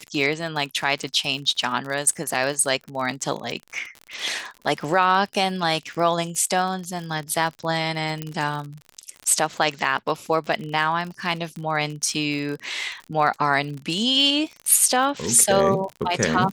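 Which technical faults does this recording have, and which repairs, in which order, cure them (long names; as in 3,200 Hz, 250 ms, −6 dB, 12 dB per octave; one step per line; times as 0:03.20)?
surface crackle 49 per second −29 dBFS
0:08.22: click −13 dBFS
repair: click removal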